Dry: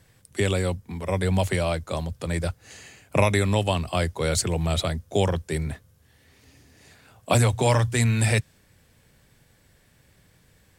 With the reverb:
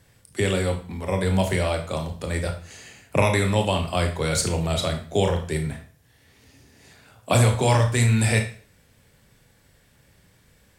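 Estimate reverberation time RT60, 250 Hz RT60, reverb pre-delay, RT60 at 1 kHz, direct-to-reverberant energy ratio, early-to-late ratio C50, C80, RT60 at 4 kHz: 0.45 s, 0.45 s, 23 ms, 0.45 s, 3.5 dB, 9.0 dB, 13.0 dB, 0.40 s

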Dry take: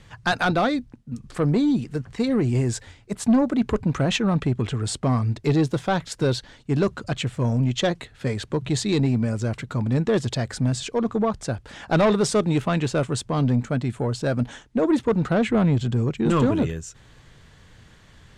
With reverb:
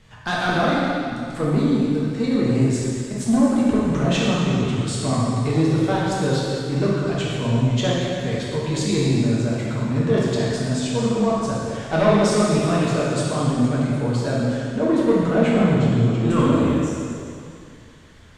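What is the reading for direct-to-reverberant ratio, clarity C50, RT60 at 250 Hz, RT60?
−6.5 dB, −2.5 dB, 2.4 s, 2.4 s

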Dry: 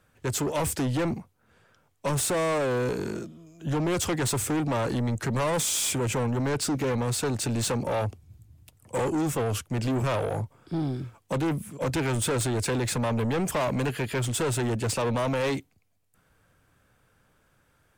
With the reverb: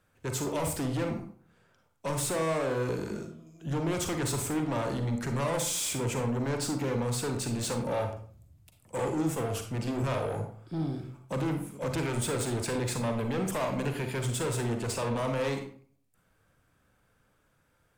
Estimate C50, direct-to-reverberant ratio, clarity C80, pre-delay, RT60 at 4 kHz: 7.0 dB, 4.5 dB, 11.0 dB, 37 ms, 0.30 s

